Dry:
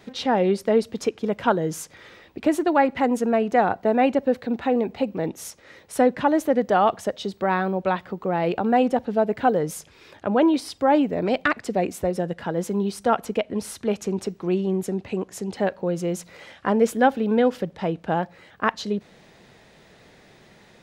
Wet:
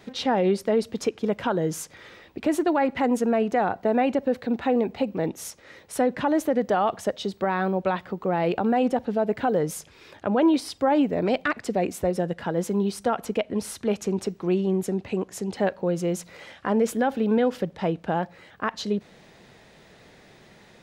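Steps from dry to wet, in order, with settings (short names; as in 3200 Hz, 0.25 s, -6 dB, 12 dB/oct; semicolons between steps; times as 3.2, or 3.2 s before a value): limiter -13 dBFS, peak gain reduction 8 dB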